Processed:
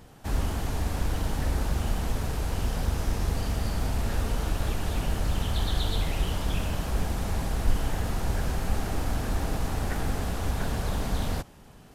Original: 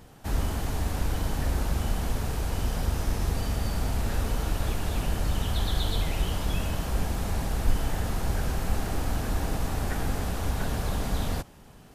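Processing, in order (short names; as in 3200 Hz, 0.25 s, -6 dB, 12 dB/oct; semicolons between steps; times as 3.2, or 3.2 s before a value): Doppler distortion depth 0.35 ms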